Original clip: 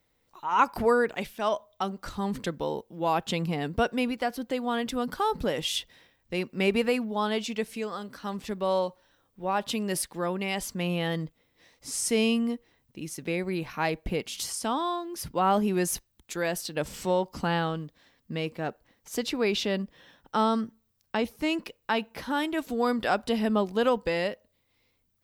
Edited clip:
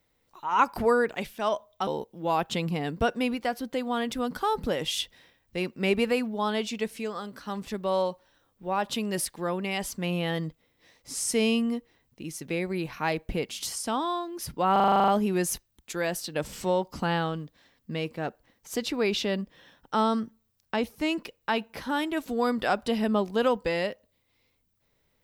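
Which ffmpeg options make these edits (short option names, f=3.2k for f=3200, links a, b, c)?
-filter_complex "[0:a]asplit=11[a][b][c][d][e][f][g][h][i][j][k];[a]atrim=end=1.872[l];[b]atrim=start=2.638:end=15.532[m];[c]atrim=start=15.488:end=15.532[n];[d]atrim=start=15.488:end=15.532[o];[e]atrim=start=15.488:end=15.532[p];[f]atrim=start=15.488:end=15.532[q];[g]atrim=start=15.488:end=15.532[r];[h]atrim=start=15.488:end=15.532[s];[i]atrim=start=15.488:end=15.532[t];[j]atrim=start=15.488:end=15.532[u];[k]atrim=start=15.488[v];[l][m]acrossfade=d=0.004:c1=hsin:c2=hsin[w];[w][n]acrossfade=d=0.004:c1=hsin:c2=hsin[x];[x][o]acrossfade=d=0.004:c1=hsin:c2=hsin[y];[y][p]acrossfade=d=0.004:c1=hsin:c2=hsin[z];[z][q]acrossfade=d=0.004:c1=hsin:c2=hsin[aa];[aa][r]acrossfade=d=0.004:c1=hsin:c2=hsin[ab];[ab][s]acrossfade=d=0.004:c1=hsin:c2=hsin[ac];[ac][t]acrossfade=d=0.004:c1=hsin:c2=hsin[ad];[ad][u]acrossfade=d=0.004:c1=hsin:c2=hsin[ae];[ae][v]acrossfade=d=0.004:c1=hsin:c2=hsin"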